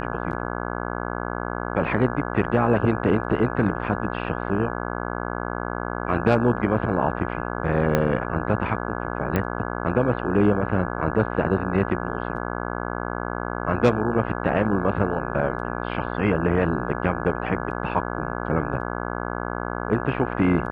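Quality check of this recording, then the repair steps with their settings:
buzz 60 Hz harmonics 28 -29 dBFS
7.95 s: pop -7 dBFS
9.36 s: pop -11 dBFS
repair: de-click; de-hum 60 Hz, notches 28

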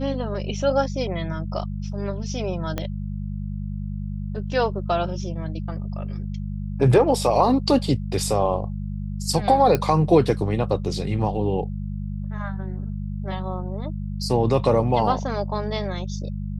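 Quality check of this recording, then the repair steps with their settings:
hum 50 Hz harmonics 4 -29 dBFS
2.78 s: pop -12 dBFS
9.75 s: pop -8 dBFS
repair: de-click; de-hum 50 Hz, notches 4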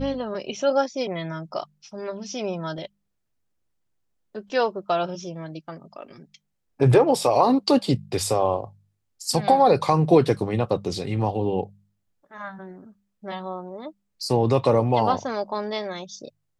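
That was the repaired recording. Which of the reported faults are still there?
2.78 s: pop

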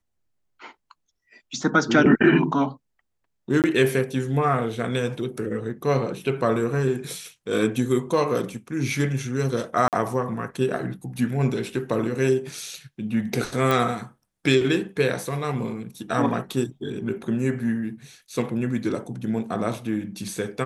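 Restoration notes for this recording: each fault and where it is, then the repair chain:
3.62–3.64 s: dropout 18 ms
9.88–9.93 s: dropout 48 ms
13.71 s: pop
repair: de-click; interpolate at 3.62 s, 18 ms; interpolate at 9.88 s, 48 ms

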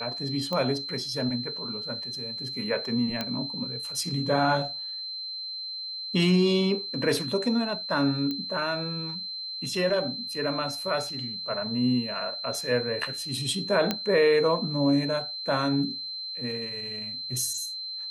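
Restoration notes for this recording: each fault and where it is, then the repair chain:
whine 4.1 kHz -33 dBFS
0.53 s: pop -17 dBFS
3.21 s: pop -14 dBFS
8.31 s: pop -19 dBFS
13.91 s: pop -10 dBFS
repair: de-click; band-stop 4.1 kHz, Q 30

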